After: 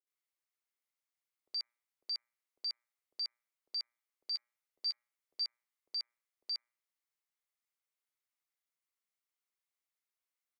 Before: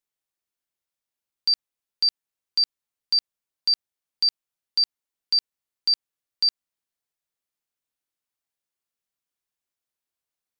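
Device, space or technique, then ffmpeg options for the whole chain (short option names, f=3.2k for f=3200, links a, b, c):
laptop speaker: -filter_complex "[0:a]highpass=f=340:w=0.5412,highpass=f=340:w=1.3066,equalizer=f=1.2k:t=o:w=0.36:g=4.5,equalizer=f=2.1k:t=o:w=0.23:g=8,alimiter=level_in=2dB:limit=-24dB:level=0:latency=1:release=101,volume=-2dB,bandreject=f=119.7:t=h:w=4,bandreject=f=239.4:t=h:w=4,bandreject=f=359.1:t=h:w=4,bandreject=f=478.8:t=h:w=4,bandreject=f=598.5:t=h:w=4,bandreject=f=718.2:t=h:w=4,bandreject=f=837.9:t=h:w=4,bandreject=f=957.6:t=h:w=4,bandreject=f=1.0773k:t=h:w=4,bandreject=f=1.197k:t=h:w=4,bandreject=f=1.3167k:t=h:w=4,bandreject=f=1.4364k:t=h:w=4,bandreject=f=1.5561k:t=h:w=4,bandreject=f=1.6758k:t=h:w=4,bandreject=f=1.7955k:t=h:w=4,bandreject=f=1.9152k:t=h:w=4,bandreject=f=2.0349k:t=h:w=4,bandreject=f=2.1546k:t=h:w=4,bandreject=f=2.2743k:t=h:w=4,bandreject=f=2.394k:t=h:w=4,asettb=1/sr,asplit=3[a][b][c];[a]atrim=end=4.264[d];[b]atrim=start=4.26:end=5.37,asetpts=PTS-STARTPTS,afade=t=in:d=0.004:c=qsin,afade=t=out:st=1.106:d=0.004:c=qsin,asplit=2[e][f];[f]adelay=12,volume=-9dB[g];[e][g]amix=inputs=2:normalize=0,atrim=end_sample=48951[h];[c]atrim=start=5.366[i];[d][h]acrossfade=d=0.004:c1=hsin:c2=qsin[j];[j][i]acrossfade=d=0.004:c1=qsin:c2=hsin,acrossover=split=540[k][l];[l]adelay=70[m];[k][m]amix=inputs=2:normalize=0,volume=-6dB"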